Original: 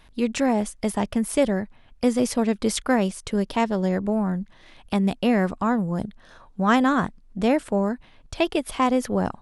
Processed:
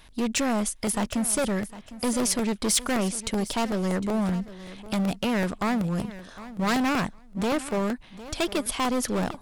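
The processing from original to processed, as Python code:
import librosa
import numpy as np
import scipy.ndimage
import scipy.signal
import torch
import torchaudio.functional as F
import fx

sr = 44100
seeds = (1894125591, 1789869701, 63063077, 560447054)

p1 = np.clip(x, -10.0 ** (-22.5 / 20.0), 10.0 ** (-22.5 / 20.0))
p2 = fx.high_shelf(p1, sr, hz=3400.0, db=8.0)
p3 = p2 + fx.echo_feedback(p2, sr, ms=756, feedback_pct=17, wet_db=-16.0, dry=0)
y = fx.buffer_crackle(p3, sr, first_s=0.68, period_s=0.19, block=64, kind='repeat')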